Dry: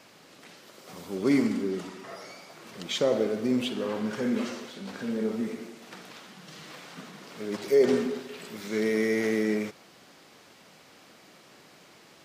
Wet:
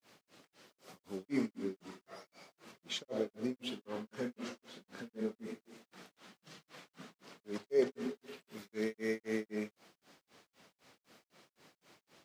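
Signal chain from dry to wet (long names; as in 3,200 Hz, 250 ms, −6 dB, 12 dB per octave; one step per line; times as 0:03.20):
granular cloud 231 ms, grains 3.9 per second, spray 15 ms, pitch spread up and down by 0 semitones
bit-depth reduction 12 bits, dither none
level −7 dB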